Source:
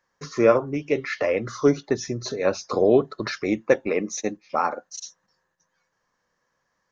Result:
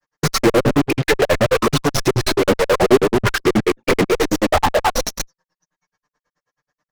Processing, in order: tracing distortion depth 0.2 ms; on a send: echo 0.197 s -8.5 dB; on the sum: envelope flanger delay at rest 6.7 ms, full sweep at -13.5 dBFS; grains 72 ms, grains 9.3/s, spray 37 ms, pitch spread up and down by 0 st; treble ducked by the level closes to 420 Hz, closed at -25 dBFS; in parallel at -6 dB: fuzz box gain 50 dB, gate -52 dBFS; on the sum: gain +6 dB

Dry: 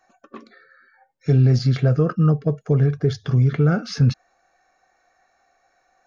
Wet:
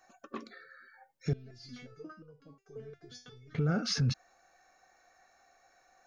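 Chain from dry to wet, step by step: high shelf 4700 Hz +6.5 dB; limiter -19.5 dBFS, peak gain reduction 11.5 dB; 1.33–3.55 stepped resonator 5.6 Hz 220–490 Hz; gain -2.5 dB

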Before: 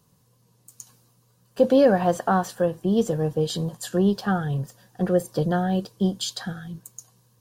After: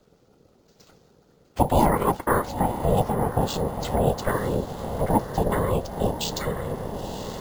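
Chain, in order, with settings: whisperiser; diffused feedback echo 0.997 s, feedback 54%, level -11.5 dB; in parallel at +1.5 dB: compressor, threshold -31 dBFS, peak gain reduction 17.5 dB; on the sum: careless resampling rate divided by 4×, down filtered, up hold; ring modulator 310 Hz

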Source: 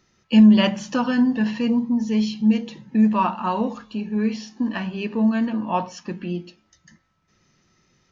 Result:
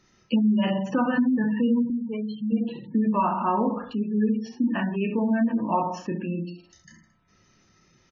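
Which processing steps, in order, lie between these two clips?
dynamic EQ 5000 Hz, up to -7 dB, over -46 dBFS, Q 0.71; on a send: reverse bouncing-ball echo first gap 30 ms, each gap 1.2×, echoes 5; on the sum: compressor 12:1, threshold -18 dBFS, peak gain reduction 9.5 dB; spectral gate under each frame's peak -25 dB strong; 1.9–2.52 low shelf 380 Hz -8.5 dB

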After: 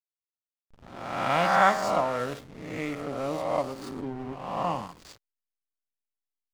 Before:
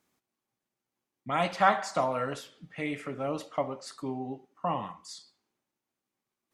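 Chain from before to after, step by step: spectral swells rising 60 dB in 1.46 s; backlash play -32 dBFS

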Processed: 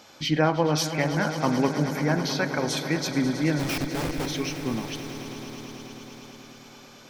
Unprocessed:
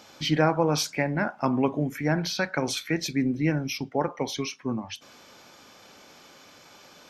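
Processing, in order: 3.59–4.26 Schmitt trigger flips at -33.5 dBFS; swelling echo 0.108 s, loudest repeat 5, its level -15 dB

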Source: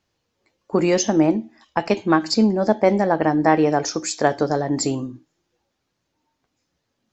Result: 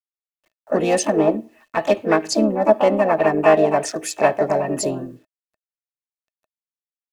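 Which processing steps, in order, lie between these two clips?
Wiener smoothing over 9 samples; high shelf 6100 Hz +4 dB; harmoniser +5 st -5 dB, +7 st -8 dB; bit-crush 10-bit; small resonant body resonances 630/1800/2600 Hz, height 12 dB, ringing for 40 ms; gain -4 dB

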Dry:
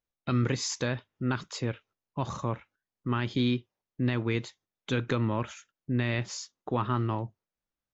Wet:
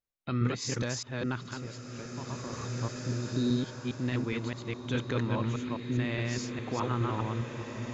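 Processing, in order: reverse delay 0.206 s, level -1 dB; 1.53–2.53 compressor 2.5:1, threshold -36 dBFS, peak gain reduction 9.5 dB; 3.08–3.62 spectral repair 680–3600 Hz; bloom reverb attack 2.36 s, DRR 5 dB; gain -4.5 dB

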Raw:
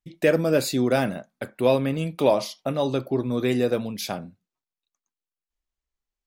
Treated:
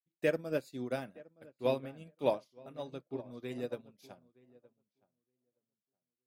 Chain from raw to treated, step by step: darkening echo 0.919 s, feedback 37%, low-pass 1600 Hz, level -9 dB; upward expander 2.5:1, over -40 dBFS; gain -8.5 dB

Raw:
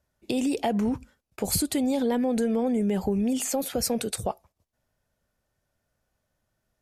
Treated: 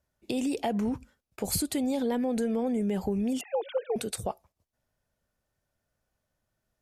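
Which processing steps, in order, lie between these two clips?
3.41–3.96 sine-wave speech; gain -3.5 dB

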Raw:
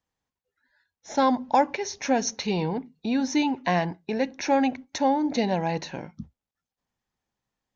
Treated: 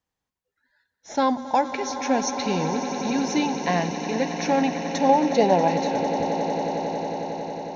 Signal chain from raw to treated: 5.09–5.68 band shelf 600 Hz +8.5 dB; swelling echo 91 ms, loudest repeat 8, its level -14 dB; ending taper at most 240 dB/s

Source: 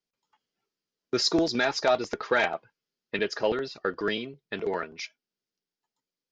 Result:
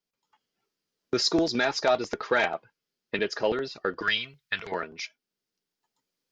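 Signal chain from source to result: recorder AGC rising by 5 dB/s; 4.02–4.72 EQ curve 110 Hz 0 dB, 340 Hz -18 dB, 1500 Hz +7 dB

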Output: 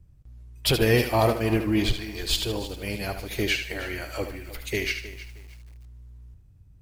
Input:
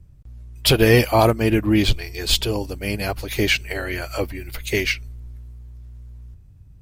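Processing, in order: thinning echo 74 ms, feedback 35%, high-pass 250 Hz, level -8 dB; lo-fi delay 0.313 s, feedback 35%, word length 6-bit, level -14.5 dB; gain -6.5 dB

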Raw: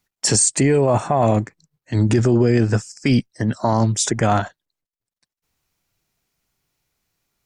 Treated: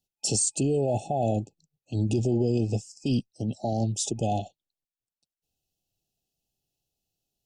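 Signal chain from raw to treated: FFT band-reject 860–2500 Hz; gain -9 dB

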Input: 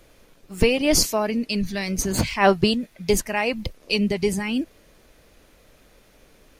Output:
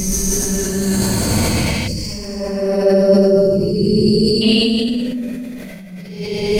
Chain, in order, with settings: Paulstretch 5.9×, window 0.25 s, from 1.96; spectral gain 1.88–4.42, 610–4300 Hz -22 dB; sustainer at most 20 dB/s; gain +5 dB

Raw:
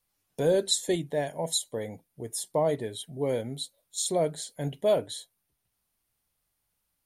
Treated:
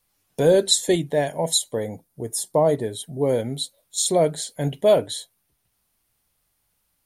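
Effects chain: 1.8–3.39 bell 2600 Hz -7 dB 1.2 oct; gain +7.5 dB

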